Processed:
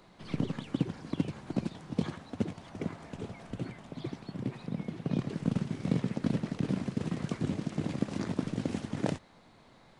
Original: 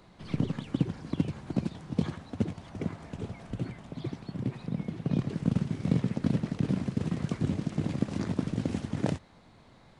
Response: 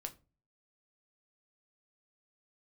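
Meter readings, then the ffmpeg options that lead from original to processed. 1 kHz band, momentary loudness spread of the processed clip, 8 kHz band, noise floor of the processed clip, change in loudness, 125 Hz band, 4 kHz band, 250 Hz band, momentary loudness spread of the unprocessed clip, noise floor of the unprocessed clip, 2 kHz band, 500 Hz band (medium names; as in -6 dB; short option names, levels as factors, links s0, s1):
0.0 dB, 9 LU, no reading, -59 dBFS, -2.5 dB, -4.0 dB, 0.0 dB, -2.0 dB, 9 LU, -57 dBFS, 0.0 dB, -0.5 dB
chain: -af "equalizer=f=64:t=o:w=2.5:g=-7.5"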